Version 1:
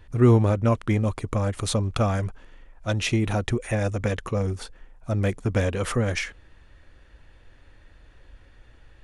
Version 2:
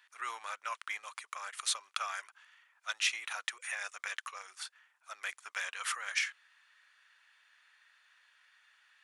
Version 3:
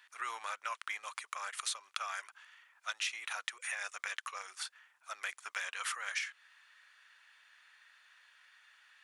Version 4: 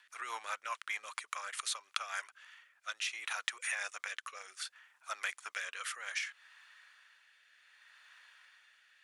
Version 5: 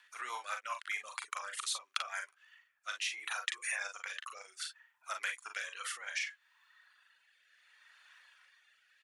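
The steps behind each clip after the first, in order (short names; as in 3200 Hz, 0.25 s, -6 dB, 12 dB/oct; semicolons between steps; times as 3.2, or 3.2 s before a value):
HPF 1200 Hz 24 dB/oct; gain -2.5 dB
compressor 3:1, threshold -39 dBFS, peak gain reduction 10 dB; gain +3 dB
rotary speaker horn 5 Hz, later 0.65 Hz, at 1.9; gain +3.5 dB
reverb removal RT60 1.5 s; early reflections 40 ms -6 dB, 52 ms -13.5 dB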